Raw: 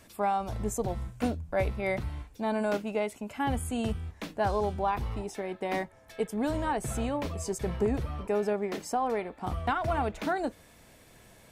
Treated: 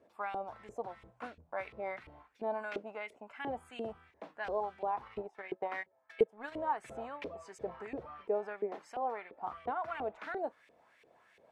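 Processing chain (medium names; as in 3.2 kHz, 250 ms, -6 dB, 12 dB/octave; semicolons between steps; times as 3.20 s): LFO band-pass saw up 2.9 Hz 410–2600 Hz; 5.06–6.52 s: transient shaper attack +5 dB, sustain -10 dB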